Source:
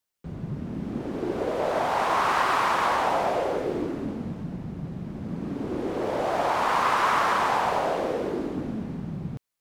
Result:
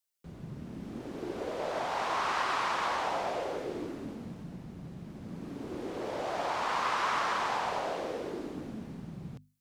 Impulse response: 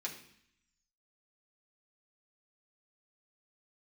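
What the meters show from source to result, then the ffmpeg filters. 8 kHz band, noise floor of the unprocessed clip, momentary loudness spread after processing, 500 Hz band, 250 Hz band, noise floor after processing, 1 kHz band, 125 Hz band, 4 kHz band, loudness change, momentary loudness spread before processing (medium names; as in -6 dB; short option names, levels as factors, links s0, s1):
-5.0 dB, -39 dBFS, 15 LU, -8.5 dB, -9.5 dB, -49 dBFS, -8.0 dB, -10.0 dB, -4.0 dB, -7.5 dB, 13 LU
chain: -filter_complex "[0:a]highshelf=f=3000:g=9,acrossover=split=7200[s0][s1];[s1]acompressor=threshold=0.00141:ratio=4:attack=1:release=60[s2];[s0][s2]amix=inputs=2:normalize=0,bandreject=f=50:t=h:w=6,bandreject=f=100:t=h:w=6,bandreject=f=150:t=h:w=6,bandreject=f=200:t=h:w=6,bandreject=f=250:t=h:w=6,volume=0.355"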